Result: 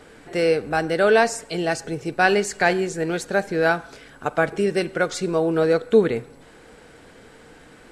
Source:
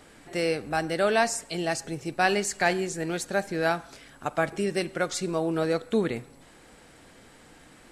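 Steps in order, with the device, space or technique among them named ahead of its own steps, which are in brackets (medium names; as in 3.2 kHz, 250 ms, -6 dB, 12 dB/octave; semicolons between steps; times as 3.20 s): inside a helmet (treble shelf 5.8 kHz -7 dB; small resonant body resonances 450/1500 Hz, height 8 dB); trim +4.5 dB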